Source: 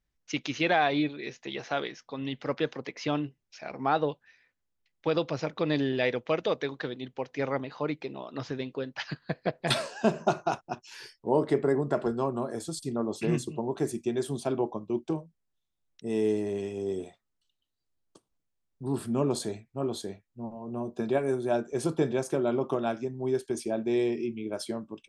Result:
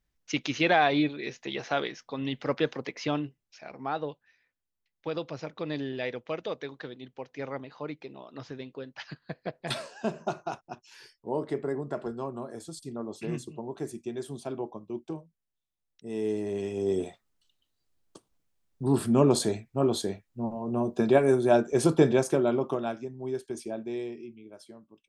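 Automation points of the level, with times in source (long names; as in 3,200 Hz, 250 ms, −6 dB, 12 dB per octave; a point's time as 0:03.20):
0:02.87 +2 dB
0:03.83 −6 dB
0:16.06 −6 dB
0:17.02 +6 dB
0:22.12 +6 dB
0:23.07 −4.5 dB
0:23.70 −4.5 dB
0:24.58 −15 dB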